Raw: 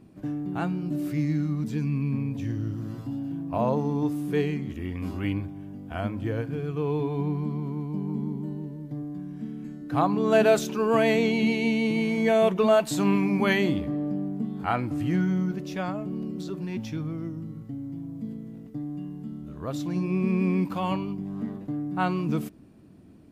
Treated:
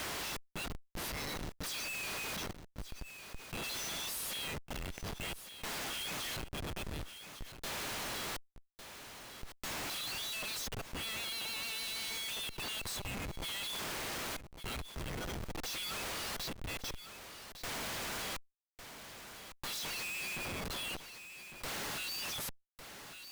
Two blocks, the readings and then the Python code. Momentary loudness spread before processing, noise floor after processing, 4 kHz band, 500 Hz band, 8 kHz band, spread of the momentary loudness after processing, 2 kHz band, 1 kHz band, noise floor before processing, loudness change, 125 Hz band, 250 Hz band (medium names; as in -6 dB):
15 LU, -65 dBFS, +3.0 dB, -21.5 dB, +5.0 dB, 11 LU, -6.5 dB, -13.0 dB, -44 dBFS, -12.0 dB, -19.5 dB, -24.0 dB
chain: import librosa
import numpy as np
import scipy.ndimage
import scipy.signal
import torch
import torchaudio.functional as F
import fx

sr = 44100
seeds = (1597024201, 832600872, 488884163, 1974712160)

y = fx.dereverb_blind(x, sr, rt60_s=1.0)
y = scipy.signal.sosfilt(scipy.signal.cheby2(4, 80, 570.0, 'highpass', fs=sr, output='sos'), y)
y = fx.notch(y, sr, hz=7200.0, q=6.9)
y = y + 0.88 * np.pad(y, (int(1.5 * sr / 1000.0), 0))[:len(y)]
y = fx.rider(y, sr, range_db=4, speed_s=2.0)
y = fx.quant_dither(y, sr, seeds[0], bits=10, dither='triangular')
y = y * (1.0 - 0.64 / 2.0 + 0.64 / 2.0 * np.cos(2.0 * np.pi * 0.5 * (np.arange(len(y)) / sr)))
y = fx.schmitt(y, sr, flips_db=-56.0)
y = y + 10.0 ** (-21.0 / 20.0) * np.pad(y, (int(1154 * sr / 1000.0), 0))[:len(y)]
y = fx.env_flatten(y, sr, amount_pct=50)
y = y * 10.0 ** (12.5 / 20.0)